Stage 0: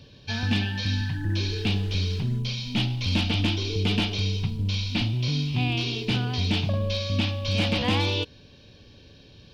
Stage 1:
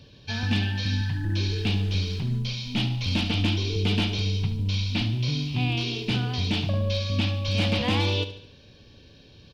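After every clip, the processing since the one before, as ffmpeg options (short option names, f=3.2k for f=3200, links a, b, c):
-af "aecho=1:1:72|144|216|288|360:0.224|0.11|0.0538|0.0263|0.0129,volume=-1dB"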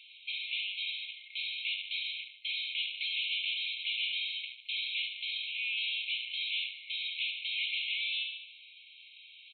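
-filter_complex "[0:a]adynamicsmooth=sensitivity=5.5:basefreq=3.3k,asplit=2[a][b];[b]highpass=f=720:p=1,volume=28dB,asoftclip=type=tanh:threshold=-14.5dB[c];[a][c]amix=inputs=2:normalize=0,lowpass=f=2.7k:p=1,volume=-6dB,afftfilt=real='re*between(b*sr/4096,2100,4200)':imag='im*between(b*sr/4096,2100,4200)':win_size=4096:overlap=0.75,volume=-7.5dB"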